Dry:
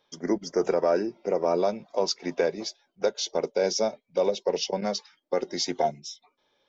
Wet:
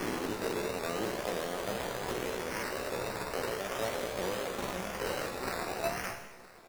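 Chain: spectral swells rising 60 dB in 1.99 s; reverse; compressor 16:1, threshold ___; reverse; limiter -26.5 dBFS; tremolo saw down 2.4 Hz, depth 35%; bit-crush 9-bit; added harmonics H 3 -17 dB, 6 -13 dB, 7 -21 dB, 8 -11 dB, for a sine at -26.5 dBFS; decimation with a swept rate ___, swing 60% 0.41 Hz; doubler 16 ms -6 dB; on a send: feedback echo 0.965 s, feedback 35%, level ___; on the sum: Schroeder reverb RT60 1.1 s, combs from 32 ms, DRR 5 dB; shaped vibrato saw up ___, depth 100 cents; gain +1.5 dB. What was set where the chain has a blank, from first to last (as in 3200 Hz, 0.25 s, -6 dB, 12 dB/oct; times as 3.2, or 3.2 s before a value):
-30 dBFS, 11×, -20 dB, 3.8 Hz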